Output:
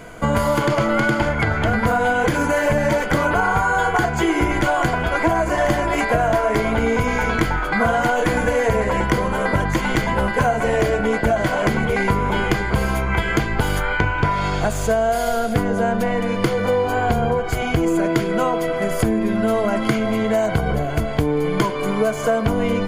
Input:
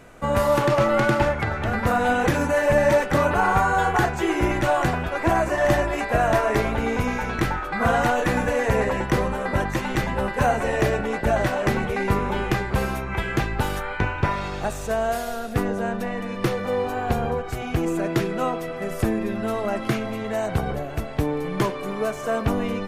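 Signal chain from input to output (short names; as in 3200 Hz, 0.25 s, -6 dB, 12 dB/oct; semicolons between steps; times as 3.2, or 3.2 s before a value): ripple EQ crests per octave 1.8, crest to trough 8 dB; compressor, threshold -23 dBFS, peak gain reduction 10 dB; gain +8 dB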